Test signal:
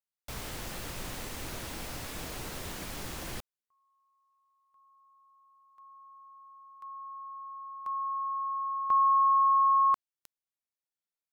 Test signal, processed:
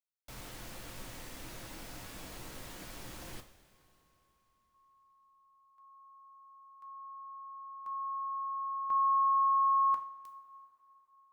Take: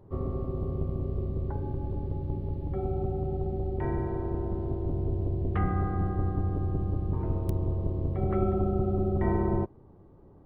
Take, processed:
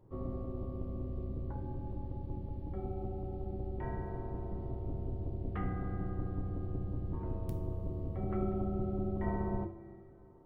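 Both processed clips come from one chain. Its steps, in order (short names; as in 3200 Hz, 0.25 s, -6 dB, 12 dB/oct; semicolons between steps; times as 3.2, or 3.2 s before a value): two-slope reverb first 0.4 s, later 3.7 s, from -18 dB, DRR 4.5 dB; gain -8.5 dB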